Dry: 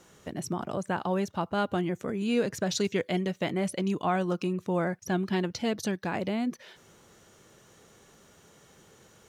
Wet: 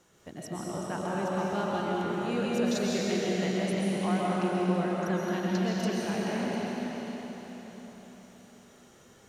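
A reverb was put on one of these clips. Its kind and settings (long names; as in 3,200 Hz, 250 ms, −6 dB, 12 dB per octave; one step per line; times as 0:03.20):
comb and all-pass reverb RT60 4.6 s, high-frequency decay 0.95×, pre-delay 90 ms, DRR −6 dB
level −7 dB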